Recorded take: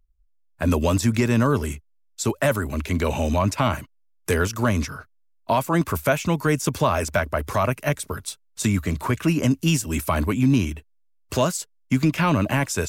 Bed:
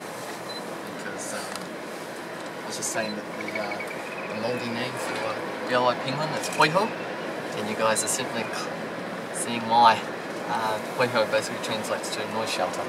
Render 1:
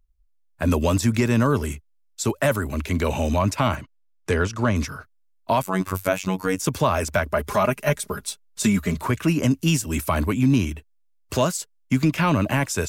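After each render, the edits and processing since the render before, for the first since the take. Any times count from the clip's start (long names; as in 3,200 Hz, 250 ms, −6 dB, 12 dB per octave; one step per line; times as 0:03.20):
0:03.75–0:04.76: high-frequency loss of the air 76 metres
0:05.62–0:06.59: phases set to zero 93.8 Hz
0:07.32–0:08.99: comb filter 4.9 ms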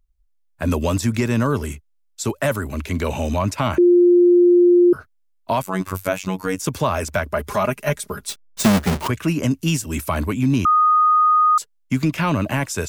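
0:03.78–0:04.93: beep over 352 Hz −9 dBFS
0:08.29–0:09.08: each half-wave held at its own peak
0:10.65–0:11.58: beep over 1,240 Hz −11.5 dBFS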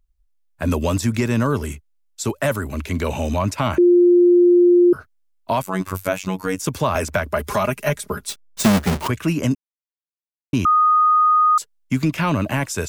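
0:06.95–0:08.18: multiband upward and downward compressor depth 70%
0:09.55–0:10.53: silence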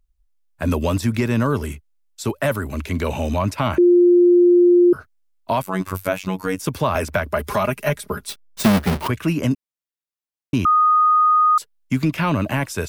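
dynamic equaliser 7,000 Hz, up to −7 dB, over −47 dBFS, Q 2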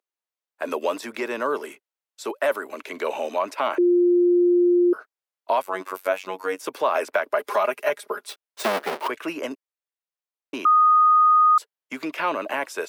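high-pass filter 390 Hz 24 dB per octave
high-shelf EQ 3,600 Hz −9 dB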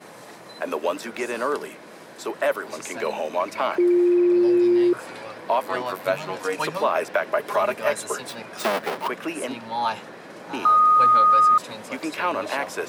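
mix in bed −8 dB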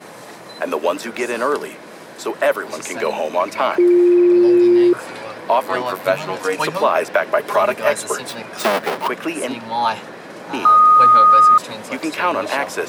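level +6 dB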